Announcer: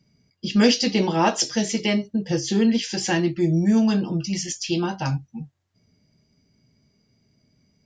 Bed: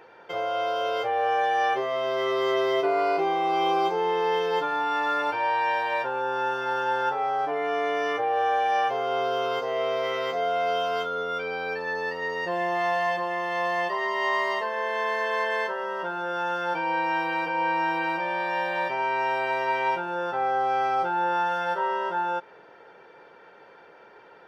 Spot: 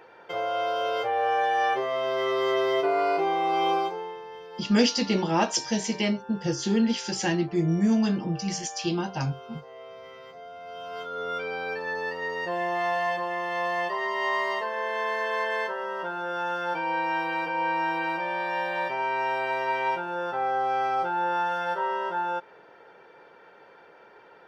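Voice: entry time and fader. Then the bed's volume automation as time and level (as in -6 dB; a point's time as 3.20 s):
4.15 s, -4.0 dB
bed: 3.74 s -0.5 dB
4.26 s -17.5 dB
10.61 s -17.5 dB
11.28 s -1.5 dB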